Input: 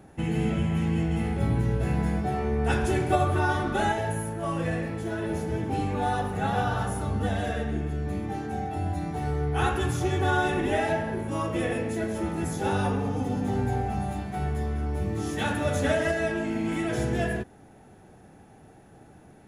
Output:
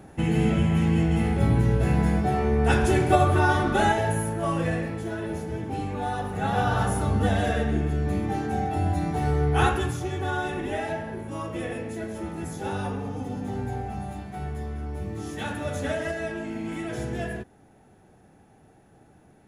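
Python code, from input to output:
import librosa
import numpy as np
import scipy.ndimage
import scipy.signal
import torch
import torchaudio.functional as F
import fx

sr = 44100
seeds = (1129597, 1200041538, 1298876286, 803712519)

y = fx.gain(x, sr, db=fx.line((4.39, 4.0), (5.46, -2.5), (6.15, -2.5), (6.83, 4.5), (9.62, 4.5), (10.03, -4.0)))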